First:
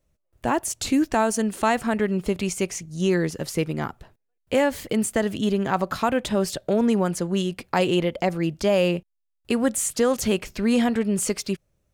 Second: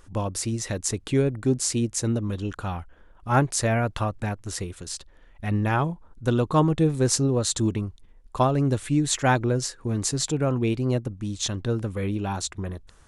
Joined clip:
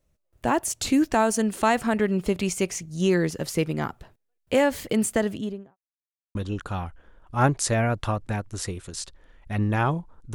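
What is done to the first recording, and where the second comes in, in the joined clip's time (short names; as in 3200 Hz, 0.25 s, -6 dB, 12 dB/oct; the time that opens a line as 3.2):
first
5.1–5.77 studio fade out
5.77–6.35 mute
6.35 switch to second from 2.28 s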